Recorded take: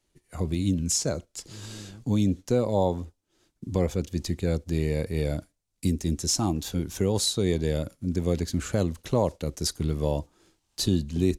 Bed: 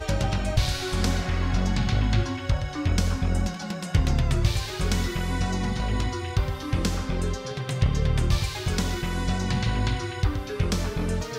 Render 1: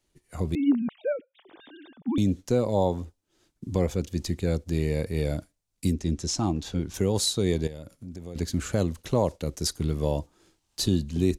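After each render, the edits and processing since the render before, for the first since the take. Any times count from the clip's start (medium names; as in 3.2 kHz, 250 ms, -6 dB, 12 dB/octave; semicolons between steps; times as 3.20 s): 0.55–2.18 s: formants replaced by sine waves; 5.93–6.94 s: distance through air 70 m; 7.67–8.36 s: compression 2.5:1, threshold -41 dBFS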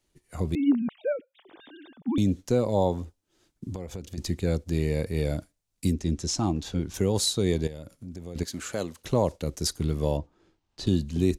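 3.72–4.18 s: compression, threshold -32 dBFS; 8.43–9.02 s: high-pass 520 Hz 6 dB/octave; 10.17–10.87 s: tape spacing loss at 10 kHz 21 dB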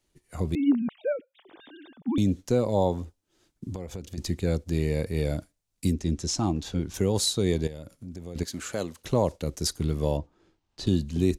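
no audible change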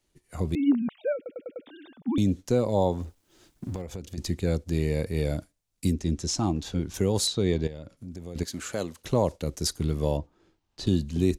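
1.16 s: stutter in place 0.10 s, 5 plays; 3.00–3.82 s: companding laws mixed up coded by mu; 7.27–7.97 s: low-pass 4.9 kHz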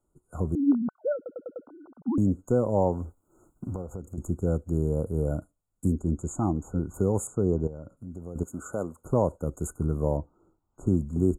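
treble shelf 7 kHz -9 dB; FFT band-reject 1.5–6.6 kHz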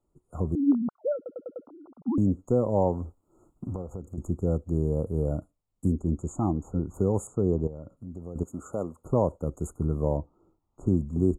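treble shelf 6.6 kHz -10.5 dB; band-stop 1.5 kHz, Q 5.1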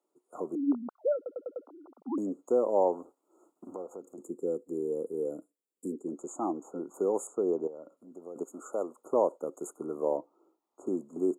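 4.22–6.08 s: time-frequency box 520–6900 Hz -12 dB; high-pass 320 Hz 24 dB/octave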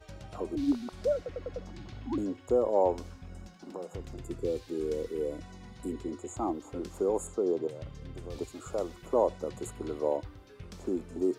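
add bed -21.5 dB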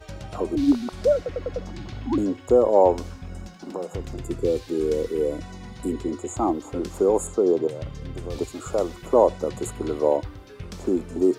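trim +9 dB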